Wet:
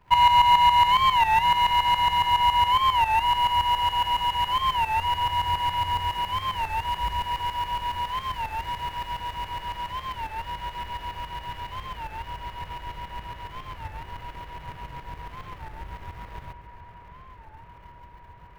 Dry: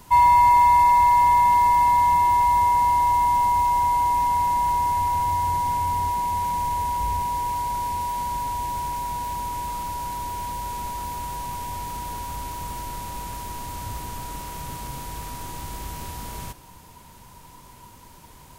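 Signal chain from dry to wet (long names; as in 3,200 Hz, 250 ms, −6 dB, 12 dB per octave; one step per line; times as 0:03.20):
running median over 25 samples
octave-band graphic EQ 250/2,000/8,000 Hz −8/+12/−5 dB
in parallel at −6 dB: dead-zone distortion −35.5 dBFS
on the sum: shaped tremolo saw up 7.2 Hz, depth 70%
on a send: delay with a low-pass on its return 738 ms, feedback 84%, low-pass 2,100 Hz, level −13 dB
on the sum: wow of a warped record 33 1/3 rpm, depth 160 cents
level −2 dB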